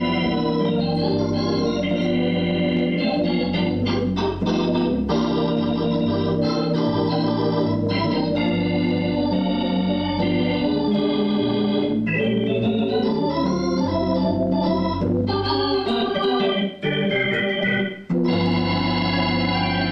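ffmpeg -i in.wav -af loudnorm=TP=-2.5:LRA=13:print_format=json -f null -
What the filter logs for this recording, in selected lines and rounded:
"input_i" : "-21.2",
"input_tp" : "-9.2",
"input_lra" : "0.5",
"input_thresh" : "-31.2",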